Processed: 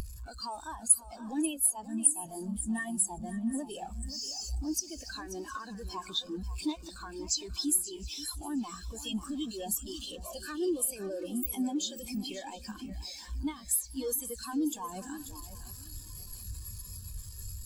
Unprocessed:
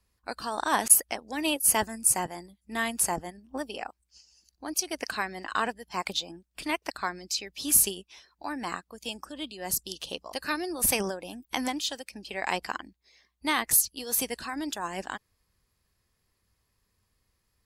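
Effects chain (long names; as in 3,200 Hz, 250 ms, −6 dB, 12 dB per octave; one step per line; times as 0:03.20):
converter with a step at zero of −25.5 dBFS
downward compressor 12 to 1, threshold −26 dBFS, peak gain reduction 15 dB
high-shelf EQ 3,000 Hz +9 dB
notch filter 2,000 Hz, Q 7.1
dynamic equaliser 7,500 Hz, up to +5 dB, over −41 dBFS, Q 4
on a send: feedback echo with a long and a short gap by turns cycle 715 ms, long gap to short 3 to 1, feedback 42%, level −6 dB
on the sum: every bin expanded away from the loudest bin 2.5 to 1
level −4 dB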